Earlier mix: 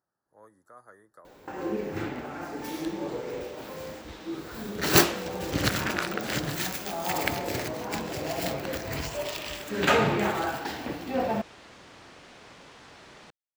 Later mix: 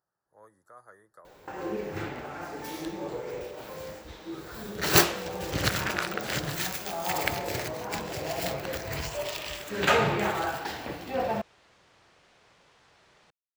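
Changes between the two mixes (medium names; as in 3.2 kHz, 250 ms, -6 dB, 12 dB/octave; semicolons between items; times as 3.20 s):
second sound -10.5 dB; master: add peaking EQ 260 Hz -7.5 dB 0.68 oct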